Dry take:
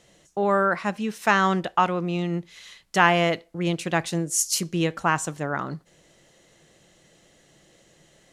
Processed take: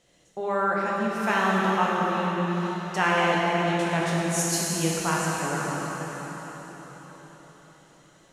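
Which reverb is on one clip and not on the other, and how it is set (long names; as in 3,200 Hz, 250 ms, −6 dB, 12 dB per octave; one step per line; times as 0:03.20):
dense smooth reverb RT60 5 s, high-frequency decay 0.85×, DRR −5.5 dB
level −7.5 dB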